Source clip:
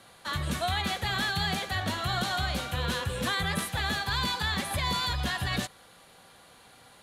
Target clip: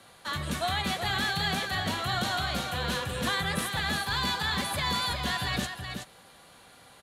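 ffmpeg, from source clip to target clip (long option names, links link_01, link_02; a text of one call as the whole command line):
ffmpeg -i in.wav -filter_complex "[0:a]aecho=1:1:374:0.447,acrossover=split=120|2200[link_01][link_02][link_03];[link_01]asoftclip=type=tanh:threshold=-38dB[link_04];[link_04][link_02][link_03]amix=inputs=3:normalize=0" out.wav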